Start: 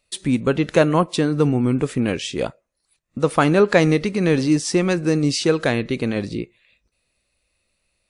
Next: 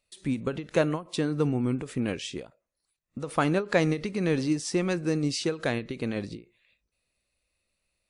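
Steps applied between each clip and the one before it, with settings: ending taper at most 200 dB/s; gain -8 dB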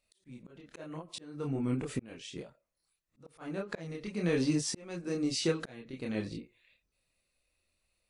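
chorus voices 4, 0.37 Hz, delay 27 ms, depth 4 ms; auto swell 0.756 s; gain +2.5 dB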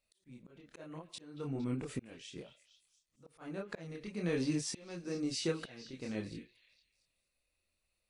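delay with a stepping band-pass 0.23 s, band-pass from 2600 Hz, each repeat 0.7 oct, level -11 dB; gain -4.5 dB

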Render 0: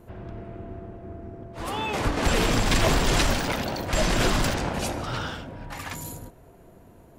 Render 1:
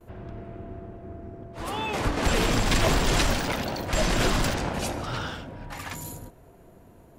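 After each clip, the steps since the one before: gate with hold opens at -43 dBFS; gain -1 dB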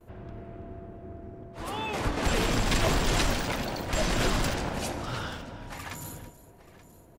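tapped delay 0.329/0.88 s -16.5/-18.5 dB; gain -3 dB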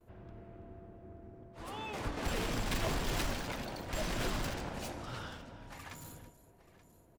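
tracing distortion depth 0.071 ms; gain -9 dB

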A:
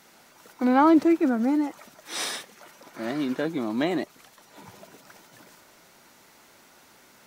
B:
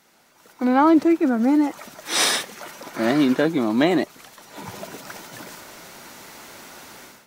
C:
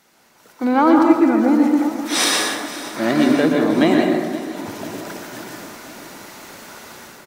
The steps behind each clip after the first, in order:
AGC gain up to 16.5 dB; gain -3.5 dB
feedback echo 0.517 s, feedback 57%, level -16 dB; plate-style reverb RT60 1.2 s, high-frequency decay 0.5×, pre-delay 0.105 s, DRR 1 dB; gain +1 dB

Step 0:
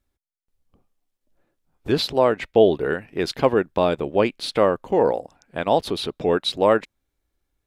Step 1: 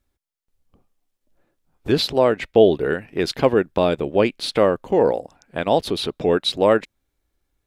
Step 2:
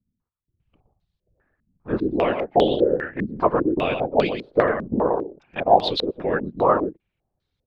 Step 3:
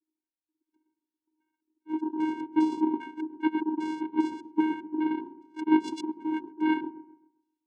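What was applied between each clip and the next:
dynamic EQ 1000 Hz, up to -4 dB, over -32 dBFS, Q 1.3; gain +2.5 dB
echo 0.12 s -6.5 dB; whisperiser; stepped low-pass 5 Hz 220–4000 Hz; gain -6 dB
vocoder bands 4, square 313 Hz; dark delay 0.132 s, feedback 34%, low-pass 690 Hz, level -11.5 dB; gain -6 dB

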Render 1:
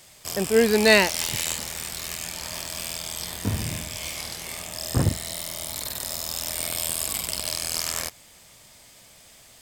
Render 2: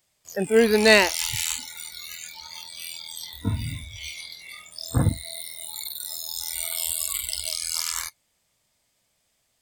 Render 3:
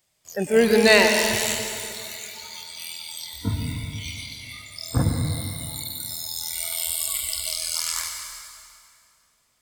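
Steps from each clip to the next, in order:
spectral noise reduction 21 dB; gain +1 dB
plate-style reverb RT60 2.4 s, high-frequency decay 0.85×, pre-delay 90 ms, DRR 3.5 dB

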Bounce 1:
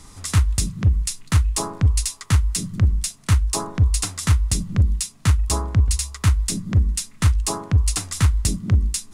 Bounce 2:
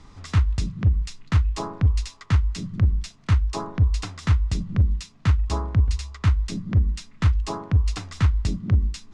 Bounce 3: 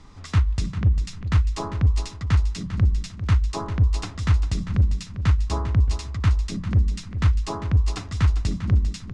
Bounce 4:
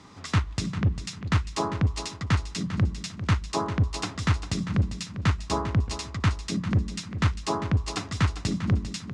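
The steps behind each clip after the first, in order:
air absorption 170 m; gain -2 dB
feedback echo 0.398 s, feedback 26%, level -11 dB
HPF 140 Hz 12 dB/oct; gain +3 dB

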